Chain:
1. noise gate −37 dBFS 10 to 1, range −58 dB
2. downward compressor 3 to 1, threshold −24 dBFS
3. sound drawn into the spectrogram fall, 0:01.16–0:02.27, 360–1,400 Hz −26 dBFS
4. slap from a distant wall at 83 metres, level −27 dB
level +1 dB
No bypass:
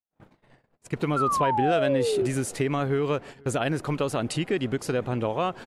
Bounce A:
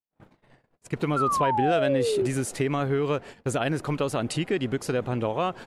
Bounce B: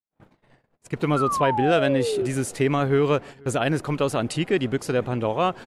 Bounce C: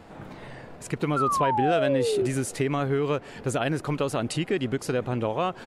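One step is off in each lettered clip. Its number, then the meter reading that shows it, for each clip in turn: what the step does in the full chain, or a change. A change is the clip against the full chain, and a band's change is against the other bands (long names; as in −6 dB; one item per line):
4, echo-to-direct ratio −28.5 dB to none audible
2, 8 kHz band −2.0 dB
1, change in momentary loudness spread +12 LU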